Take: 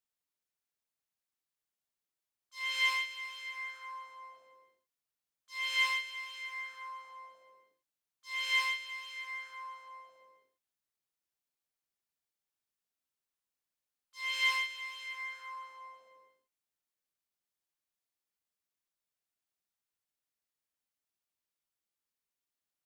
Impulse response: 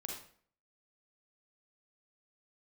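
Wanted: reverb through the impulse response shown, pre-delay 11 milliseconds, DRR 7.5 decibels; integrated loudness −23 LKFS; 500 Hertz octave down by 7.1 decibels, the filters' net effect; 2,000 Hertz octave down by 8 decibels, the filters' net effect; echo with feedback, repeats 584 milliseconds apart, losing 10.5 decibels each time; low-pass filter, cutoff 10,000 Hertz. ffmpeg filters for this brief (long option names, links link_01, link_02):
-filter_complex "[0:a]lowpass=10000,equalizer=frequency=500:width_type=o:gain=-7,equalizer=frequency=2000:width_type=o:gain=-8,aecho=1:1:584|1168|1752:0.299|0.0896|0.0269,asplit=2[link_01][link_02];[1:a]atrim=start_sample=2205,adelay=11[link_03];[link_02][link_03]afir=irnorm=-1:irlink=0,volume=-6dB[link_04];[link_01][link_04]amix=inputs=2:normalize=0,volume=16.5dB"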